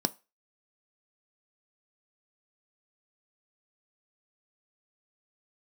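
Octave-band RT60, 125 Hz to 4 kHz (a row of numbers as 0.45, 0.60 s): 0.25, 0.20, 0.25, 0.30, 0.30, 0.30 s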